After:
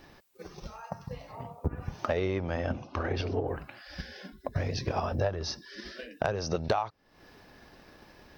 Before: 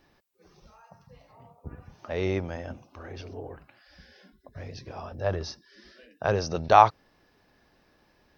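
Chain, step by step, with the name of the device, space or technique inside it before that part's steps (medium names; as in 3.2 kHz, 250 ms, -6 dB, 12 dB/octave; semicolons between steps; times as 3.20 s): drum-bus smash (transient shaper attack +8 dB, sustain +1 dB; compression 16:1, threshold -33 dBFS, peak gain reduction 28 dB; saturation -24.5 dBFS, distortion -20 dB); 2.17–3.48 s: low-pass 5.4 kHz 24 dB/octave; trim +9 dB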